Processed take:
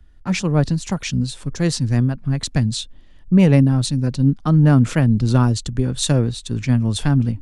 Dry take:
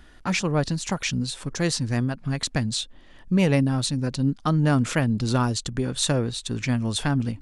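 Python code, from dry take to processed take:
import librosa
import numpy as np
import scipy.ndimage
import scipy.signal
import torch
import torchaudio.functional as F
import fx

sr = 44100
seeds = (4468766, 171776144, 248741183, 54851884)

y = fx.low_shelf(x, sr, hz=280.0, db=10.5)
y = fx.band_widen(y, sr, depth_pct=40)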